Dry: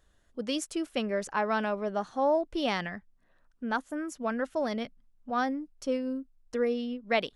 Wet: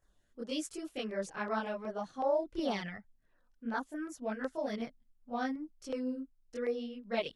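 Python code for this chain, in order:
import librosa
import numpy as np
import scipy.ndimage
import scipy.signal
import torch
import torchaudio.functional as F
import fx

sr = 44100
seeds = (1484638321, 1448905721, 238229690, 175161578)

y = fx.chorus_voices(x, sr, voices=2, hz=0.95, base_ms=23, depth_ms=4.3, mix_pct=65)
y = fx.filter_lfo_notch(y, sr, shape='saw_down', hz=2.7, low_hz=520.0, high_hz=4000.0, q=2.1)
y = F.gain(torch.from_numpy(y), -3.0).numpy()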